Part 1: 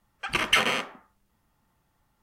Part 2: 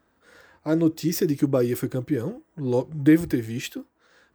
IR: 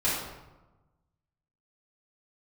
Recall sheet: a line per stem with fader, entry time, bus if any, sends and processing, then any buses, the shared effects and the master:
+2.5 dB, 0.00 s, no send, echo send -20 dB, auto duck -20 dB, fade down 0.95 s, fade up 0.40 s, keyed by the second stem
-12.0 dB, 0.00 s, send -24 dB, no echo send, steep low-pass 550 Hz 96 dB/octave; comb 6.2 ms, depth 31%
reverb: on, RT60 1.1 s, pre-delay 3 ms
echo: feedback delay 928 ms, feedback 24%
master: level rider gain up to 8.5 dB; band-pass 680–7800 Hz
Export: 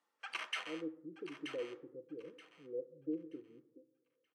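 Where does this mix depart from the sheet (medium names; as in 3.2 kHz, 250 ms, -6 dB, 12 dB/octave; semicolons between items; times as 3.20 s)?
stem 1 +2.5 dB -> -7.0 dB; master: missing level rider gain up to 8.5 dB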